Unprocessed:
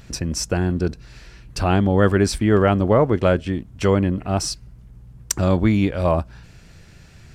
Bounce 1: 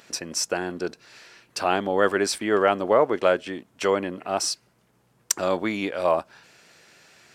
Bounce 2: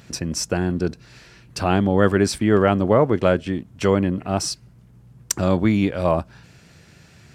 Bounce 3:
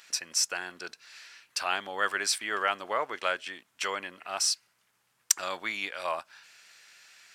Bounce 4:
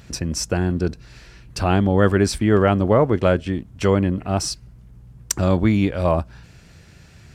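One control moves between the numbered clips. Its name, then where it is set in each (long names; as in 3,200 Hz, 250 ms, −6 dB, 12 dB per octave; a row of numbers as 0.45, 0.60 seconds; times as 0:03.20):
high-pass filter, corner frequency: 440, 110, 1,400, 44 Hertz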